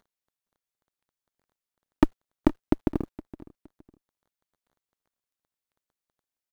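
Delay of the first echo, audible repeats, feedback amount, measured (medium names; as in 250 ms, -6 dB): 466 ms, 2, 26%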